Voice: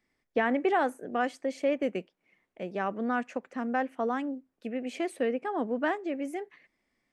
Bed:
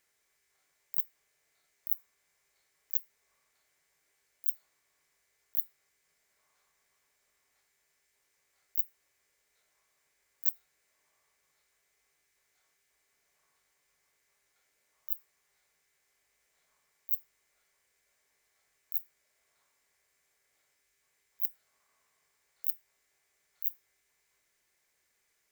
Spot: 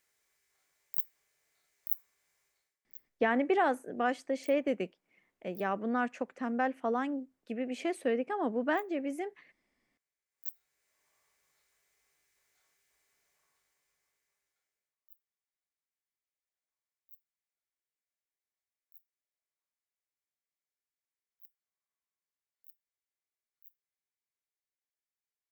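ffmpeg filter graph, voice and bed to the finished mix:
ffmpeg -i stem1.wav -i stem2.wav -filter_complex "[0:a]adelay=2850,volume=-1.5dB[link_01];[1:a]volume=17.5dB,afade=type=out:start_time=2.42:duration=0.36:silence=0.125893,afade=type=in:start_time=10.28:duration=0.89:silence=0.112202,afade=type=out:start_time=13.06:duration=1.91:silence=0.0562341[link_02];[link_01][link_02]amix=inputs=2:normalize=0" out.wav

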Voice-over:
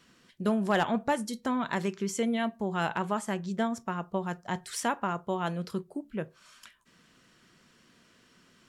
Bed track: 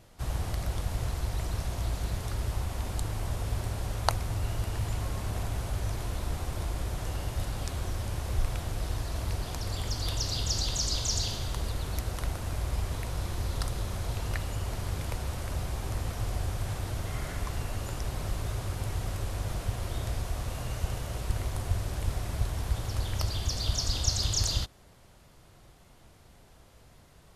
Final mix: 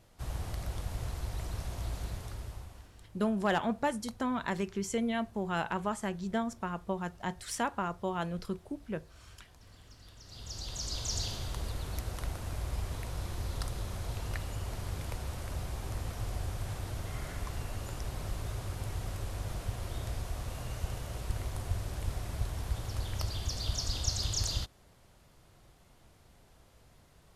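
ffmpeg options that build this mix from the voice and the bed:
ffmpeg -i stem1.wav -i stem2.wav -filter_complex "[0:a]adelay=2750,volume=-3dB[link_01];[1:a]volume=13.5dB,afade=type=out:start_time=2:duration=0.9:silence=0.125893,afade=type=in:start_time=10.23:duration=0.98:silence=0.112202[link_02];[link_01][link_02]amix=inputs=2:normalize=0" out.wav

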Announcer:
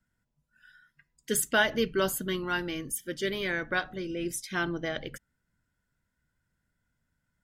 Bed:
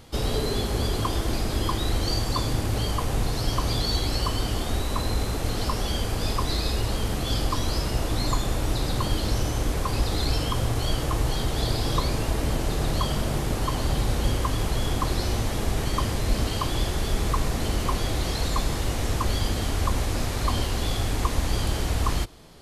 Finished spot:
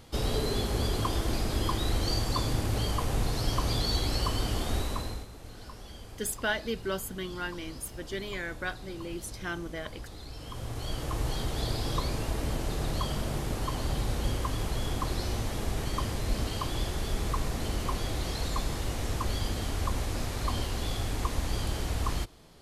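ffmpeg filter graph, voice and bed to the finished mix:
ffmpeg -i stem1.wav -i stem2.wav -filter_complex "[0:a]adelay=4900,volume=-5.5dB[link_01];[1:a]volume=9.5dB,afade=type=out:start_time=4.79:duration=0.48:silence=0.16788,afade=type=in:start_time=10.34:duration=0.93:silence=0.223872[link_02];[link_01][link_02]amix=inputs=2:normalize=0" out.wav

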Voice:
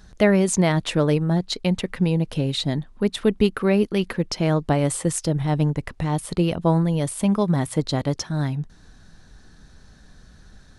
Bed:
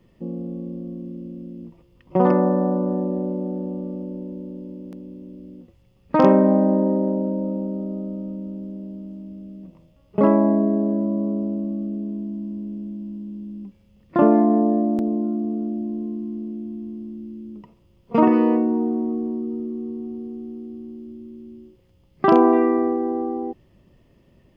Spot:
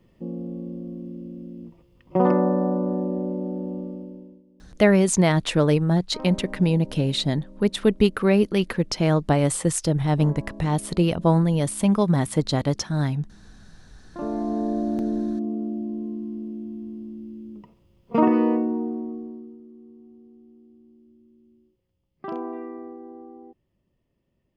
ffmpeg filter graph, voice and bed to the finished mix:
ffmpeg -i stem1.wav -i stem2.wav -filter_complex "[0:a]adelay=4600,volume=0.5dB[link_01];[1:a]volume=18dB,afade=type=out:start_time=3.78:duration=0.65:silence=0.0944061,afade=type=in:start_time=14.1:duration=0.99:silence=0.1,afade=type=out:start_time=18.45:duration=1.14:silence=0.177828[link_02];[link_01][link_02]amix=inputs=2:normalize=0" out.wav

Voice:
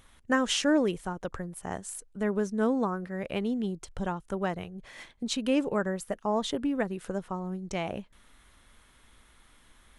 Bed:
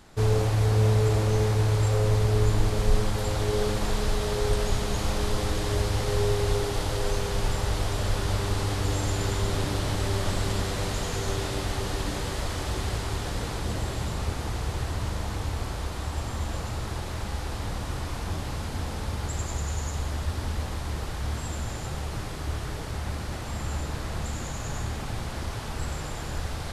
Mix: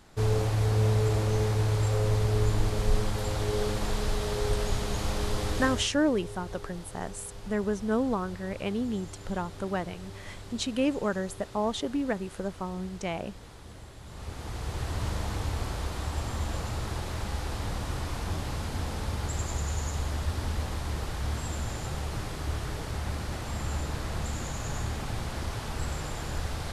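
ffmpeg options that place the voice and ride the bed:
ffmpeg -i stem1.wav -i stem2.wav -filter_complex "[0:a]adelay=5300,volume=-0.5dB[link_01];[1:a]volume=13dB,afade=type=out:start_time=5.63:duration=0.26:silence=0.199526,afade=type=in:start_time=14.03:duration=1.04:silence=0.158489[link_02];[link_01][link_02]amix=inputs=2:normalize=0" out.wav

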